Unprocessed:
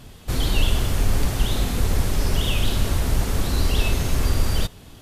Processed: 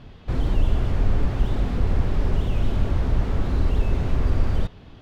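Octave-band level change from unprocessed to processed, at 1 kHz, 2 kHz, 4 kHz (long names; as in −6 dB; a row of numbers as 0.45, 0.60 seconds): −3.0, −8.0, −15.0 decibels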